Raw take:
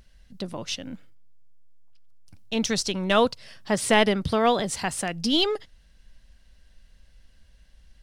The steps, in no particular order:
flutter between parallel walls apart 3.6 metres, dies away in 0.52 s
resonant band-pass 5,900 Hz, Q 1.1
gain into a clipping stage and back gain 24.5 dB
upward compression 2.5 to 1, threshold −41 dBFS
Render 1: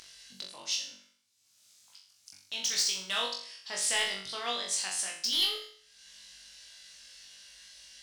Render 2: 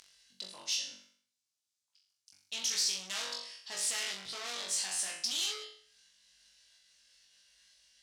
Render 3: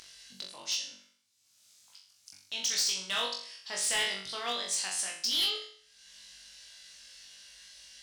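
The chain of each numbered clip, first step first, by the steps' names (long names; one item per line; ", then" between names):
resonant band-pass, then gain into a clipping stage and back, then upward compression, then flutter between parallel walls
upward compression, then flutter between parallel walls, then gain into a clipping stage and back, then resonant band-pass
resonant band-pass, then upward compression, then flutter between parallel walls, then gain into a clipping stage and back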